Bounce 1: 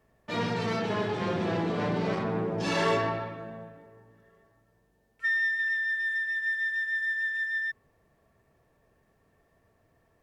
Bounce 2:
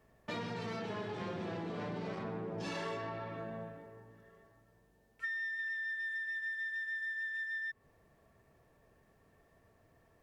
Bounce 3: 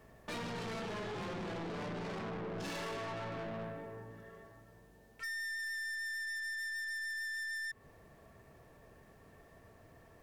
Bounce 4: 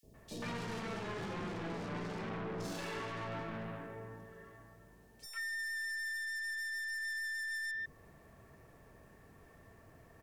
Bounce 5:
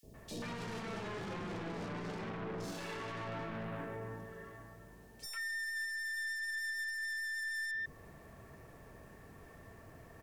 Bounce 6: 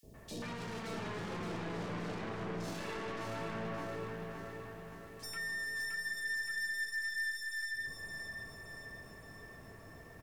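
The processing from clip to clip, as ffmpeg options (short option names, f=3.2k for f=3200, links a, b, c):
-af "acompressor=threshold=-38dB:ratio=6"
-af "aeval=exprs='(tanh(224*val(0)+0.15)-tanh(0.15))/224':c=same,volume=8dB"
-filter_complex "[0:a]acrossover=split=590|3700[a][b][c];[a]adelay=30[d];[b]adelay=140[e];[d][e][c]amix=inputs=3:normalize=0,volume=1dB"
-af "alimiter=level_in=15dB:limit=-24dB:level=0:latency=1:release=21,volume=-15dB,volume=4.5dB"
-af "aecho=1:1:570|1140|1710|2280|2850|3420|3990:0.531|0.281|0.149|0.079|0.0419|0.0222|0.0118"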